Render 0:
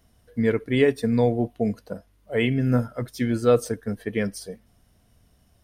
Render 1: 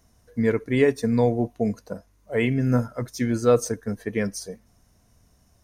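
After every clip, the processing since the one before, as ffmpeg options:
-af "equalizer=f=1k:t=o:w=0.33:g=4,equalizer=f=3.15k:t=o:w=0.33:g=-7,equalizer=f=6.3k:t=o:w=0.33:g=10"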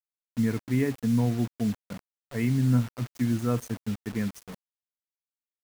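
-af "equalizer=f=125:t=o:w=1:g=6,equalizer=f=250:t=o:w=1:g=5,equalizer=f=500:t=o:w=1:g=-10,equalizer=f=4k:t=o:w=1:g=-11,equalizer=f=8k:t=o:w=1:g=-6,acrusher=bits=5:mix=0:aa=0.000001,volume=-6dB"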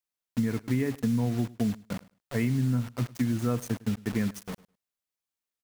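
-af "acompressor=threshold=-28dB:ratio=6,aecho=1:1:104|208:0.0841|0.0126,volume=4.5dB"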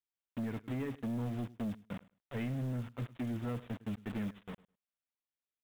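-af "aresample=8000,asoftclip=type=hard:threshold=-26dB,aresample=44100,acrusher=bits=6:mode=log:mix=0:aa=0.000001,volume=-7.5dB"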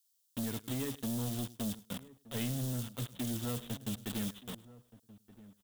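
-filter_complex "[0:a]aexciter=amount=6.1:drive=7.7:freq=3.3k,asplit=2[a][b];[b]adelay=1224,volume=-18dB,highshelf=f=4k:g=-27.6[c];[a][c]amix=inputs=2:normalize=0"

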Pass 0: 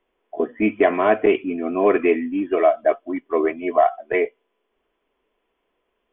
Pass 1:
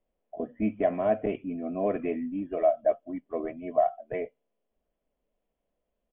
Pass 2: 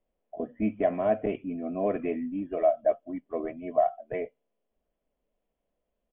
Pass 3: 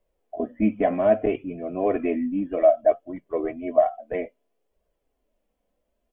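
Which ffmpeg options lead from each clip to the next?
-af "firequalizer=gain_entry='entry(170,0);entry(380,-17);entry(570,-4);entry(990,-18)':delay=0.05:min_phase=1"
-af anull
-af "flanger=delay=1.8:depth=2.3:regen=-33:speed=0.62:shape=triangular,volume=9dB"

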